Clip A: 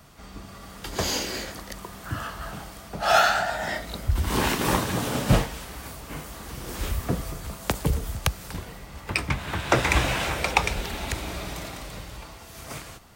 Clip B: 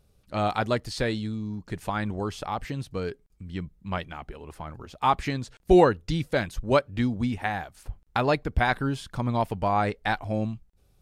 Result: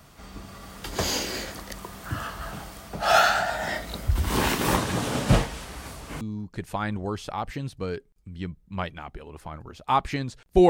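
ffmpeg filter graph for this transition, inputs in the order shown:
ffmpeg -i cue0.wav -i cue1.wav -filter_complex "[0:a]asettb=1/sr,asplit=3[link_01][link_02][link_03];[link_01]atrim=end=4.764[link_04];[link_02]atrim=start=4.76:end=6.21,asetpts=PTS-STARTPTS,afade=type=in:duration=0.004:curve=qsin,afade=type=out:start_time=1.446:duration=0.004:curve=qsin,lowpass=11000[link_05];[link_03]atrim=start=6.206[link_06];[link_04][link_05]acrossfade=duration=0.004:curve1=hsin:curve2=qsin[link_07];[link_07][link_06]acrossfade=duration=0.004:curve1=qsin:curve2=hsin,apad=whole_dur=10.69,atrim=end=10.69,atrim=end=6.212[link_08];[1:a]atrim=start=1.348:end=5.83[link_09];[link_08][link_09]acrossfade=duration=0.004:curve1=hsin:curve2=hsin" out.wav

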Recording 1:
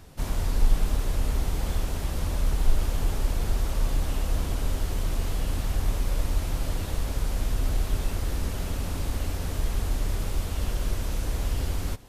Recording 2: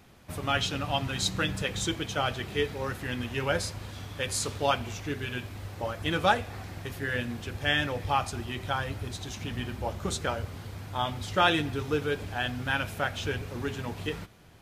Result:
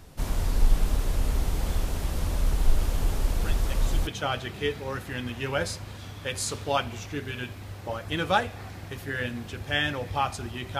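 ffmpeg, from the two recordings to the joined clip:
ffmpeg -i cue0.wav -i cue1.wav -filter_complex "[1:a]asplit=2[link_01][link_02];[0:a]apad=whole_dur=10.79,atrim=end=10.79,atrim=end=4.072[link_03];[link_02]atrim=start=2.008:end=8.73[link_04];[link_01]atrim=start=1.32:end=2.01,asetpts=PTS-STARTPTS,volume=-11dB,afade=type=in:duration=0.004:curve=hsin,afade=type=out:start_time=0.686:duration=0.004:curve=hsin,adelay=3380[link_05];[link_03][link_04]acrossfade=duration=0.004:curve1=hsin:curve2=hsin[link_06];[link_06][link_05]amix=inputs=2:normalize=0" out.wav

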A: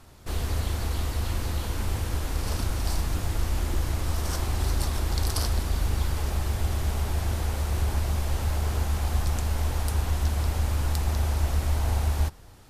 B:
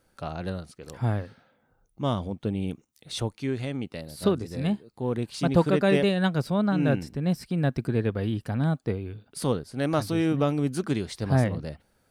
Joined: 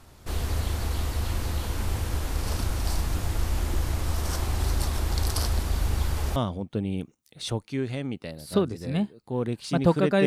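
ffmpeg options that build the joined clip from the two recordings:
ffmpeg -i cue0.wav -i cue1.wav -filter_complex "[0:a]apad=whole_dur=10.26,atrim=end=10.26,atrim=end=6.362[link_01];[1:a]atrim=start=2.058:end=5.96[link_02];[link_01][link_02]acrossfade=duration=0.004:curve1=hsin:curve2=hsin" out.wav

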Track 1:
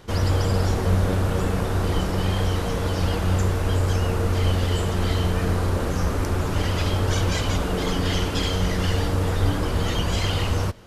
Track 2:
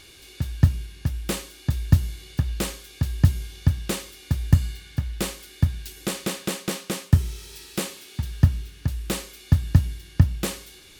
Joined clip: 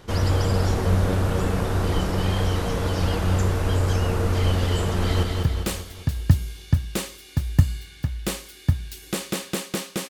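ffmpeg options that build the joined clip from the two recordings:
ffmpeg -i cue0.wav -i cue1.wav -filter_complex "[0:a]apad=whole_dur=10.09,atrim=end=10.09,atrim=end=5.232[link_01];[1:a]atrim=start=2.168:end=7.03[link_02];[link_01][link_02]acrossfade=duration=0.004:curve1=hsin:curve2=hsin,asplit=2[link_03][link_04];[link_04]afade=type=in:start_time=4.97:duration=0.01,afade=type=out:start_time=5.23:duration=0.01,aecho=0:1:200|400|600|800|1000|1200|1400:0.630957|0.347027|0.190865|0.104976|0.0577365|0.0317551|0.0174653[link_05];[link_03][link_05]amix=inputs=2:normalize=0" out.wav

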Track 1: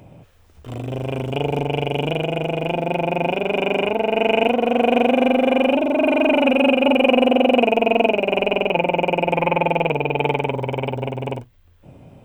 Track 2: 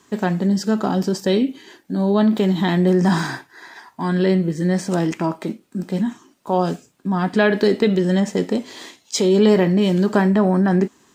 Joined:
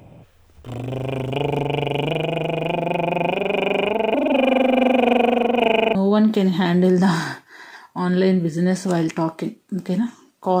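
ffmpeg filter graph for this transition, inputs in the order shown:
ffmpeg -i cue0.wav -i cue1.wav -filter_complex "[0:a]apad=whole_dur=10.6,atrim=end=10.6,asplit=2[link_01][link_02];[link_01]atrim=end=4.142[link_03];[link_02]atrim=start=4.138:end=5.952,asetpts=PTS-STARTPTS,areverse[link_04];[1:a]atrim=start=1.978:end=6.63[link_05];[link_03][link_04]acrossfade=duration=0.004:curve1=hsin:curve2=hsin[link_06];[link_06][link_05]acrossfade=duration=0.004:curve1=hsin:curve2=hsin" out.wav

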